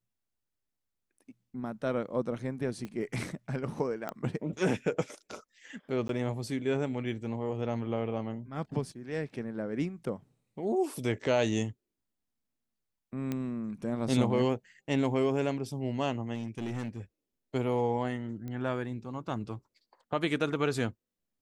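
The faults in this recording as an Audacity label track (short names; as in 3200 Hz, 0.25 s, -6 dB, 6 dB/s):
2.850000	2.850000	pop -26 dBFS
4.090000	4.090000	pop -21 dBFS
6.080000	6.090000	gap 12 ms
13.320000	13.320000	pop -20 dBFS
16.340000	17.000000	clipped -31 dBFS
18.480000	18.480000	pop -28 dBFS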